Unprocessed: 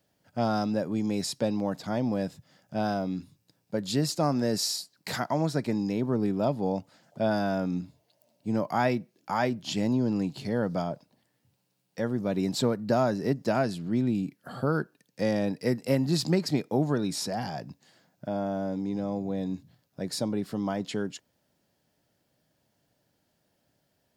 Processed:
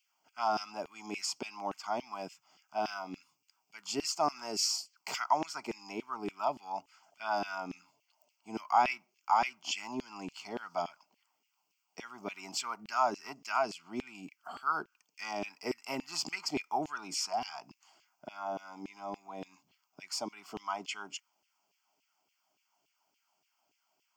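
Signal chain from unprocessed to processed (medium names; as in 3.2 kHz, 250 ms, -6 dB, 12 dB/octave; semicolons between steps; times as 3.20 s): static phaser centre 2.6 kHz, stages 8; LFO high-pass saw down 3.5 Hz 390–2800 Hz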